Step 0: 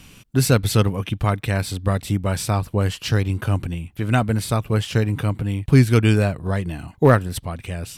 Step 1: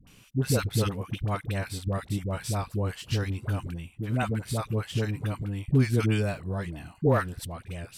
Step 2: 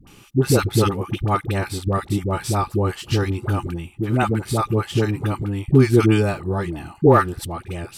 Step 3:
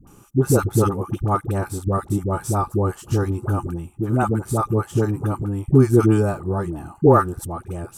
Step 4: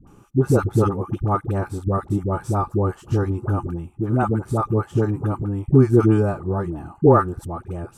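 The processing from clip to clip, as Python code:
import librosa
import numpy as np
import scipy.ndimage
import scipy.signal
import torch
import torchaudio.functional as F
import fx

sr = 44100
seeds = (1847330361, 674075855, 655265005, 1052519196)

y1 = fx.dispersion(x, sr, late='highs', ms=72.0, hz=670.0)
y1 = F.gain(torch.from_numpy(y1), -8.5).numpy()
y2 = fx.small_body(y1, sr, hz=(360.0, 840.0, 1200.0), ring_ms=45, db=12)
y2 = F.gain(torch.from_numpy(y2), 6.5).numpy()
y3 = fx.band_shelf(y2, sr, hz=3000.0, db=-14.0, octaves=1.7)
y4 = fx.lowpass(y3, sr, hz=2300.0, slope=6)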